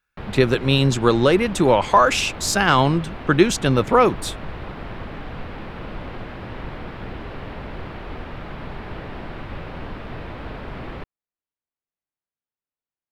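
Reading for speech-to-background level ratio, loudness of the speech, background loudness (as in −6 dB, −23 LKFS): 16.5 dB, −18.0 LKFS, −34.5 LKFS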